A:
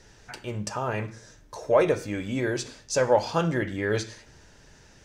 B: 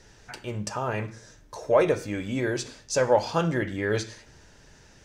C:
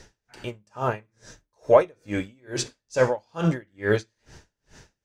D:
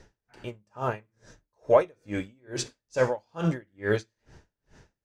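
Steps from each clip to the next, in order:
no processing that can be heard
tremolo with a sine in dB 2.3 Hz, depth 38 dB; level +6 dB
one half of a high-frequency compander decoder only; level −3.5 dB

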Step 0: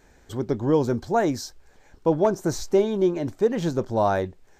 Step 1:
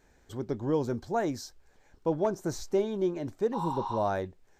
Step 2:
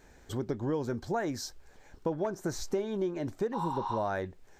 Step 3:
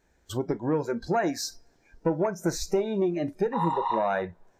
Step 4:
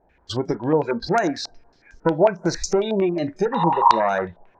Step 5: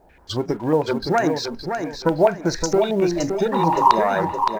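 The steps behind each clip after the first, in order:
healed spectral selection 0:03.56–0:03.97, 760–7,200 Hz after; level −7.5 dB
dynamic equaliser 1,700 Hz, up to +6 dB, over −50 dBFS, Q 1.7; downward compressor 4 to 1, threshold −36 dBFS, peak gain reduction 12 dB; level +6 dB
one-sided soft clipper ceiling −23.5 dBFS; coupled-rooms reverb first 0.38 s, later 4.1 s, from −18 dB, DRR 12 dB; noise reduction from a noise print of the clip's start 17 dB; level +7 dB
low-pass on a step sequencer 11 Hz 750–6,300 Hz; level +4.5 dB
mu-law and A-law mismatch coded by mu; on a send: repeating echo 567 ms, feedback 30%, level −6.5 dB

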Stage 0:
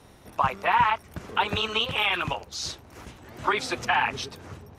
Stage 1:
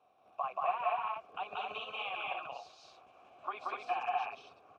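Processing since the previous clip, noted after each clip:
formant filter a
loudspeakers that aren't time-aligned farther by 62 metres −1 dB, 84 metres −3 dB
level −5 dB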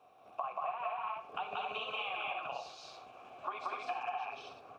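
downward compressor 6 to 1, threshold −42 dBFS, peak gain reduction 14 dB
on a send at −8 dB: convolution reverb, pre-delay 3 ms
on the sum: level +6 dB

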